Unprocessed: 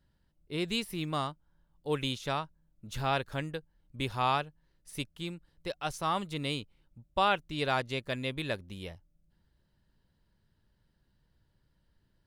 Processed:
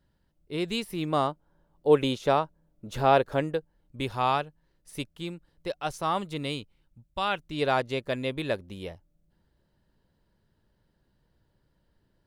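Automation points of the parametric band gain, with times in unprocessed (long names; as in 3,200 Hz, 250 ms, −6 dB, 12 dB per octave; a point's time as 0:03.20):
parametric band 500 Hz 2.4 octaves
0:00.88 +4.5 dB
0:01.29 +13.5 dB
0:03.33 +13.5 dB
0:04.04 +5 dB
0:06.34 +5 dB
0:07.20 −5 dB
0:07.62 +7 dB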